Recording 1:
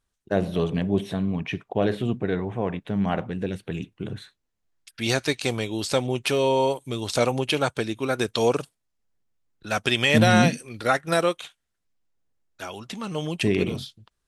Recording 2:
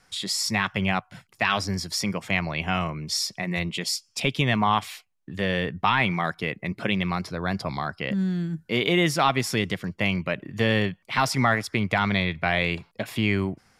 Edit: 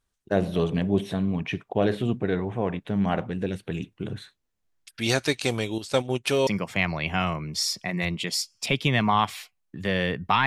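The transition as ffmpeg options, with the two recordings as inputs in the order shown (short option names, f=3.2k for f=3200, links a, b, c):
-filter_complex "[0:a]asettb=1/sr,asplit=3[a][b][c];[a]atrim=end=5.784[d];[b]atrim=start=5.78:end=6.47,asetpts=PTS-STARTPTS,afade=t=in:d=0.004:c=qsin,afade=t=out:st=0.686:d=0.004:c=qsin,agate=range=-9dB:threshold=-27dB:ratio=16:release=100:detection=peak[e];[c]atrim=start=6.466[f];[d][e]acrossfade=d=0.004:c1=hsin:c2=qsin[g];[g][f]acrossfade=d=0.004:c1=qsin:c2=hsin,apad=whole_dur=10.46,atrim=end=10.46,atrim=end=6.472[h];[1:a]atrim=start=2.008:end=6[i];[h][i]acrossfade=d=0.004:c1=hsin:c2=hsin"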